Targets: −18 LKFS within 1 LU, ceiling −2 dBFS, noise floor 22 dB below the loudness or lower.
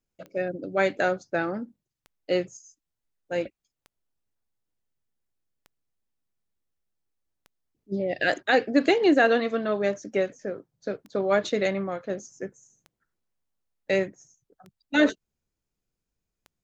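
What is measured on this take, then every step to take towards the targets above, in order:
number of clicks 10; integrated loudness −26.0 LKFS; sample peak −8.0 dBFS; target loudness −18.0 LKFS
→ click removal
level +8 dB
brickwall limiter −2 dBFS

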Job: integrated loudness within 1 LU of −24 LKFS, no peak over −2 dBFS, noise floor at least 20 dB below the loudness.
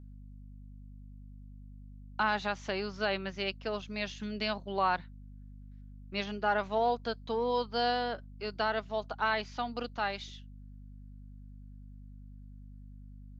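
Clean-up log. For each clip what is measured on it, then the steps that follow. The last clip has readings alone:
mains hum 50 Hz; hum harmonics up to 250 Hz; level of the hum −47 dBFS; integrated loudness −33.5 LKFS; sample peak −16.5 dBFS; target loudness −24.0 LKFS
→ mains-hum notches 50/100/150/200/250 Hz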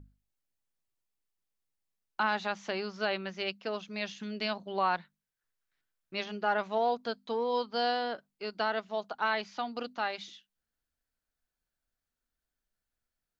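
mains hum none found; integrated loudness −33.5 LKFS; sample peak −16.5 dBFS; target loudness −24.0 LKFS
→ level +9.5 dB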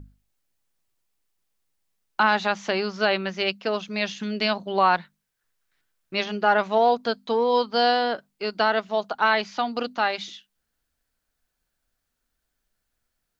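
integrated loudness −24.0 LKFS; sample peak −7.0 dBFS; background noise floor −79 dBFS

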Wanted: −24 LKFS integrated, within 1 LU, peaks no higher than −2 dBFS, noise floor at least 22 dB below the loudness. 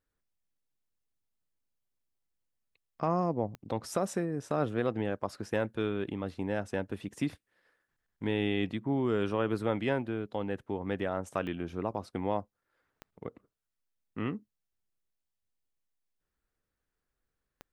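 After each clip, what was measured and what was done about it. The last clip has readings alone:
number of clicks 4; integrated loudness −33.5 LKFS; sample peak −16.0 dBFS; target loudness −24.0 LKFS
→ click removal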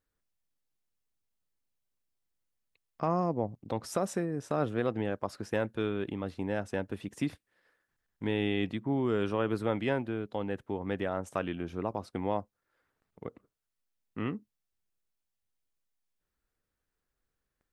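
number of clicks 0; integrated loudness −33.5 LKFS; sample peak −16.0 dBFS; target loudness −24.0 LKFS
→ level +9.5 dB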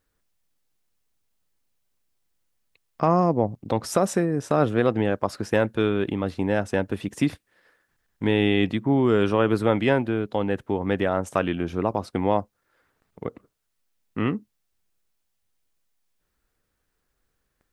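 integrated loudness −24.0 LKFS; sample peak −6.5 dBFS; background noise floor −76 dBFS

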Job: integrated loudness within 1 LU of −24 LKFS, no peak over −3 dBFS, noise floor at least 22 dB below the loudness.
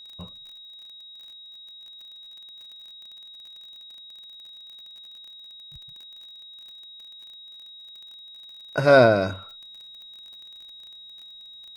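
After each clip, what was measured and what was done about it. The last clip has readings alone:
crackle rate 32 per second; interfering tone 3,800 Hz; level of the tone −42 dBFS; integrated loudness −19.0 LKFS; sample peak −3.0 dBFS; target loudness −24.0 LKFS
→ click removal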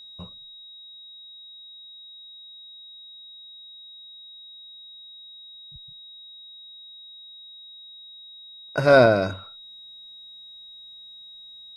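crackle rate 0 per second; interfering tone 3,800 Hz; level of the tone −42 dBFS
→ notch filter 3,800 Hz, Q 30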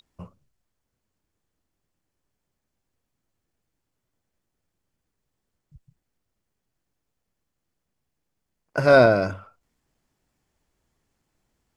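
interfering tone none found; integrated loudness −18.5 LKFS; sample peak −3.5 dBFS; target loudness −24.0 LKFS
→ level −5.5 dB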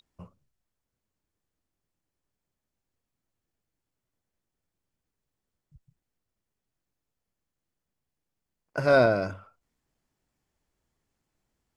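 integrated loudness −24.0 LKFS; sample peak −9.0 dBFS; background noise floor −86 dBFS

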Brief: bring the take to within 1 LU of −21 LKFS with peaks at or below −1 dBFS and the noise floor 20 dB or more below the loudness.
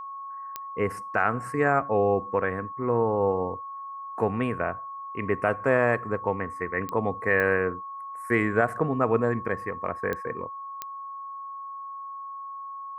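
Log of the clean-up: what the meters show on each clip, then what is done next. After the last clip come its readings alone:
number of clicks 5; interfering tone 1,100 Hz; level of the tone −35 dBFS; integrated loudness −27.0 LKFS; sample peak −8.5 dBFS; target loudness −21.0 LKFS
→ click removal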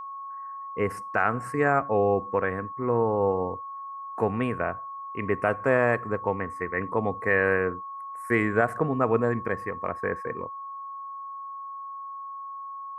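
number of clicks 0; interfering tone 1,100 Hz; level of the tone −35 dBFS
→ notch filter 1,100 Hz, Q 30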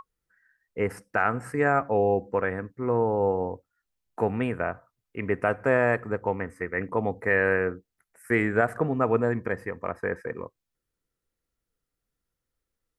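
interfering tone none found; integrated loudness −26.5 LKFS; sample peak −8.5 dBFS; target loudness −21.0 LKFS
→ level +5.5 dB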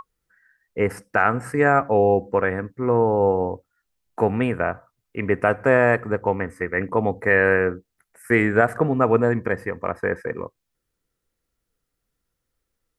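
integrated loudness −21.0 LKFS; sample peak −3.0 dBFS; background noise floor −79 dBFS

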